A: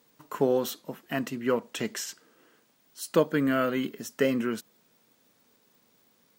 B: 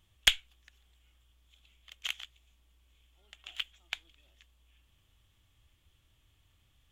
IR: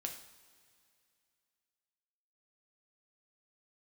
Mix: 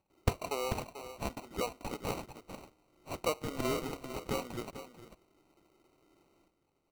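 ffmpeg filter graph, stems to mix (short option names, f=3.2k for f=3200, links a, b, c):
-filter_complex "[0:a]adelay=100,volume=-2dB,asplit=2[a][b];[b]volume=-11.5dB[c];[1:a]lowpass=3.5k,aphaser=in_gain=1:out_gain=1:delay=3.7:decay=0.54:speed=1.6:type=sinusoidal,volume=-5dB,asplit=2[d][e];[e]volume=-8dB[f];[c][f]amix=inputs=2:normalize=0,aecho=0:1:440:1[g];[a][d][g]amix=inputs=3:normalize=0,highpass=790,acrusher=samples=26:mix=1:aa=0.000001"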